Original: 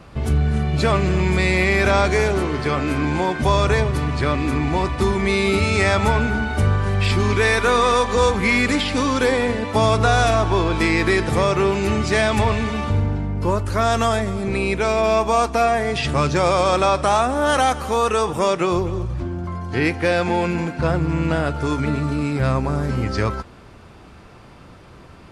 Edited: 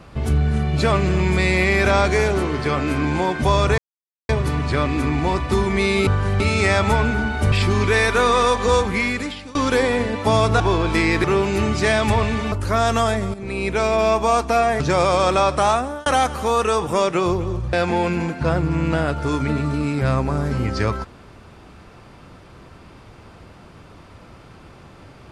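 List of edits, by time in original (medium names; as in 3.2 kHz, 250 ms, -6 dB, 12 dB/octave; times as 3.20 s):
3.78 s: insert silence 0.51 s
6.68–7.01 s: move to 5.56 s
8.22–9.04 s: fade out, to -23 dB
10.09–10.46 s: delete
11.10–11.53 s: delete
12.81–13.57 s: delete
14.39–14.82 s: fade in, from -12.5 dB
15.85–16.26 s: delete
17.18–17.52 s: fade out
19.19–20.11 s: delete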